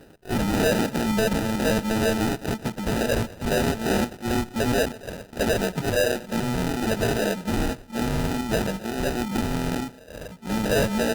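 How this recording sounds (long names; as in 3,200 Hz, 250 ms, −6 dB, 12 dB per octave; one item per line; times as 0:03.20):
aliases and images of a low sample rate 1,100 Hz, jitter 0%
Opus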